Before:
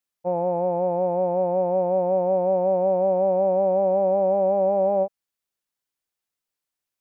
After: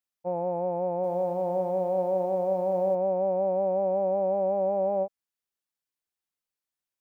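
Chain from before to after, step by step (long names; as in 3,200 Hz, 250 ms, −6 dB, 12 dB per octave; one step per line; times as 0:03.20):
0:00.95–0:02.95: feedback echo at a low word length 86 ms, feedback 55%, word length 8 bits, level −12 dB
level −5.5 dB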